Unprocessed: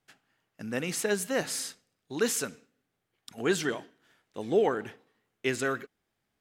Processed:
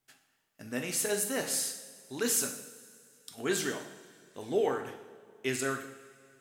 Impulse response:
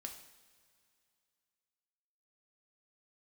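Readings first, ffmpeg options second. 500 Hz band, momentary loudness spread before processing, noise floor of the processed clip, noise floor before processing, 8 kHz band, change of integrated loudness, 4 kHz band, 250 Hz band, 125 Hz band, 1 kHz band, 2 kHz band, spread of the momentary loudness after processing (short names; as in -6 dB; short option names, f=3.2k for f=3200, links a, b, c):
-3.5 dB, 14 LU, -73 dBFS, -81 dBFS, +3.0 dB, -1.5 dB, -0.5 dB, -3.5 dB, -4.0 dB, -3.0 dB, -3.0 dB, 20 LU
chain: -filter_complex "[0:a]highshelf=f=6.8k:g=12[a];[1:a]atrim=start_sample=2205[b];[a][b]afir=irnorm=-1:irlink=0"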